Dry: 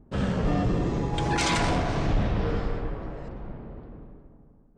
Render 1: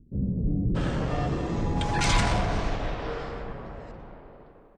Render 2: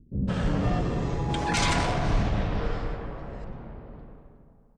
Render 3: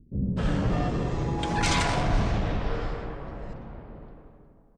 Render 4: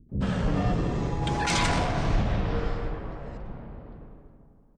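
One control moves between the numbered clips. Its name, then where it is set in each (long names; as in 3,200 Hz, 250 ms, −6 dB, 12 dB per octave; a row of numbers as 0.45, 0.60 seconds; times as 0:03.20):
multiband delay without the direct sound, delay time: 630, 160, 250, 90 milliseconds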